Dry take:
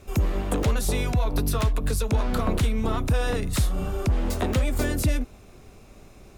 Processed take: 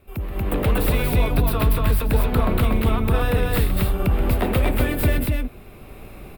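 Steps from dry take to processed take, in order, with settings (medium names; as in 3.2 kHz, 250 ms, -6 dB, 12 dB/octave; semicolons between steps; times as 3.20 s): tracing distortion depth 0.092 ms; fifteen-band graphic EQ 2.5 kHz +3 dB, 6.3 kHz -6 dB, 16 kHz +10 dB; loudspeakers at several distances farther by 44 m -11 dB, 81 m -2 dB; level rider gain up to 14 dB; peaking EQ 6.3 kHz -12 dB 0.78 oct; trim -6.5 dB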